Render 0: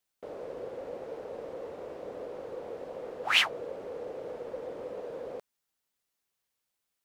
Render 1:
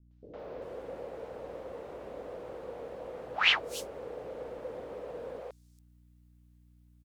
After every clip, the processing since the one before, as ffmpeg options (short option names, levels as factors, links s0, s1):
-filter_complex "[0:a]aeval=exprs='val(0)+0.00112*(sin(2*PI*60*n/s)+sin(2*PI*2*60*n/s)/2+sin(2*PI*3*60*n/s)/3+sin(2*PI*4*60*n/s)/4+sin(2*PI*5*60*n/s)/5)':c=same,acrossover=split=400|5500[s0][s1][s2];[s1]adelay=110[s3];[s2]adelay=390[s4];[s0][s3][s4]amix=inputs=3:normalize=0"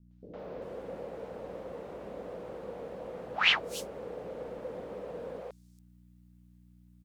-af "equalizer=f=190:t=o:w=0.62:g=8.5"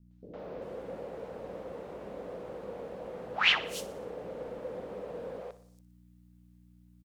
-af "aecho=1:1:60|120|180|240|300:0.168|0.094|0.0526|0.0295|0.0165"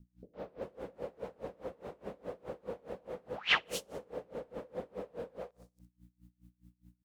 -af "aeval=exprs='val(0)*pow(10,-27*(0.5-0.5*cos(2*PI*4.8*n/s))/20)':c=same,volume=1.41"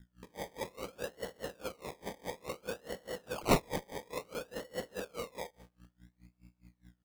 -af "acrusher=samples=25:mix=1:aa=0.000001:lfo=1:lforange=15:lforate=0.58,volume=1.19"